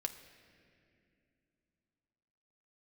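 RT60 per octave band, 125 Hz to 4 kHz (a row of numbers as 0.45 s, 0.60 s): 3.5 s, 3.7 s, 3.0 s, 2.1 s, 2.5 s, 1.8 s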